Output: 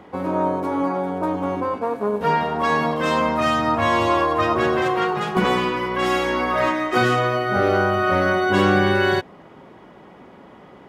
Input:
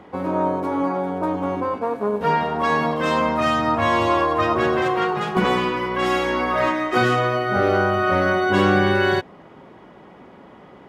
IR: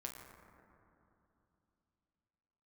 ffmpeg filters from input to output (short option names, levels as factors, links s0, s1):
-af "highshelf=f=6700:g=4"